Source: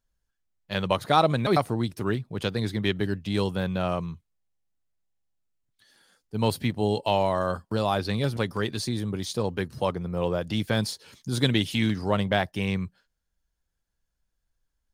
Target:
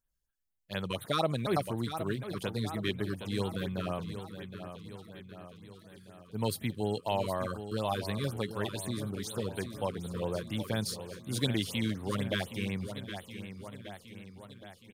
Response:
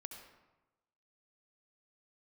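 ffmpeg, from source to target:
-af "crystalizer=i=1:c=0,aecho=1:1:768|1536|2304|3072|3840|4608|5376:0.316|0.18|0.103|0.0586|0.0334|0.019|0.0108,afftfilt=real='re*(1-between(b*sr/1024,670*pow(6100/670,0.5+0.5*sin(2*PI*4.1*pts/sr))/1.41,670*pow(6100/670,0.5+0.5*sin(2*PI*4.1*pts/sr))*1.41))':imag='im*(1-between(b*sr/1024,670*pow(6100/670,0.5+0.5*sin(2*PI*4.1*pts/sr))/1.41,670*pow(6100/670,0.5+0.5*sin(2*PI*4.1*pts/sr))*1.41))':win_size=1024:overlap=0.75,volume=-7.5dB"

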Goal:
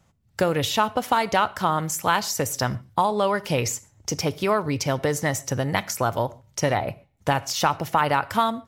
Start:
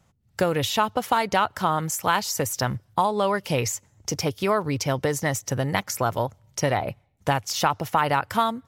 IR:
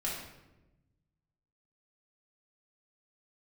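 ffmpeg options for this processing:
-filter_complex "[0:a]asplit=2[a][b];[b]lowpass=f=11k:w=0.5412,lowpass=f=11k:w=1.3066[c];[1:a]atrim=start_sample=2205,atrim=end_sample=6615,highshelf=f=8.6k:g=8.5[d];[c][d]afir=irnorm=-1:irlink=0,volume=-19dB[e];[a][e]amix=inputs=2:normalize=0"

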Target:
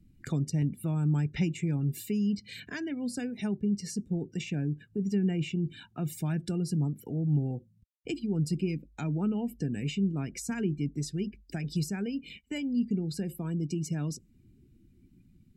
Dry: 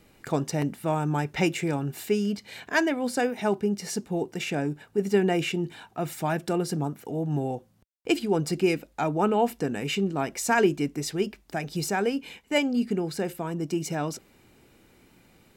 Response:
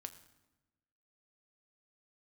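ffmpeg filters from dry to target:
-filter_complex "[0:a]equalizer=f=780:t=o:w=2.1:g=-14.5,acrossover=split=240[a][b];[b]acompressor=threshold=-44dB:ratio=5[c];[a][c]amix=inputs=2:normalize=0,afftdn=nr=23:nf=-54,volume=5dB"

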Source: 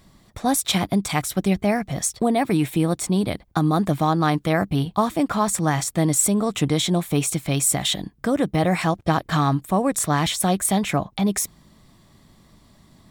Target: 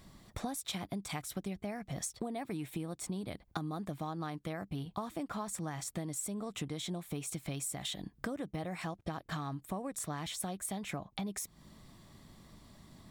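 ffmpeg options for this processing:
-af "acompressor=threshold=-32dB:ratio=12,volume=-3.5dB"

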